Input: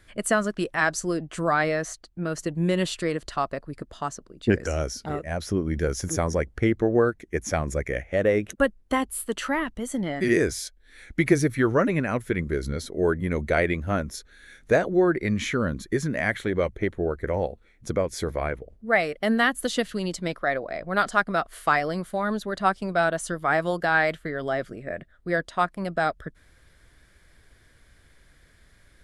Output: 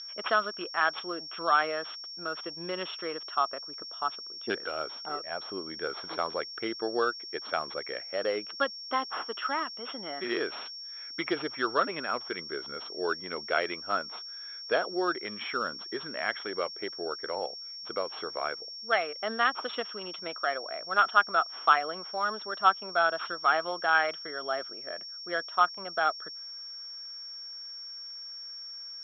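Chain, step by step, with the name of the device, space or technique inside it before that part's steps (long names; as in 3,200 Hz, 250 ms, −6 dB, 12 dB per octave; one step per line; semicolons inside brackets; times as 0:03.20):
toy sound module (linearly interpolated sample-rate reduction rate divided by 4×; switching amplifier with a slow clock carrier 5,500 Hz; loudspeaker in its box 570–4,200 Hz, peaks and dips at 570 Hz −4 dB, 1,300 Hz +7 dB, 1,900 Hz −6 dB, 3,300 Hz +10 dB)
level −2 dB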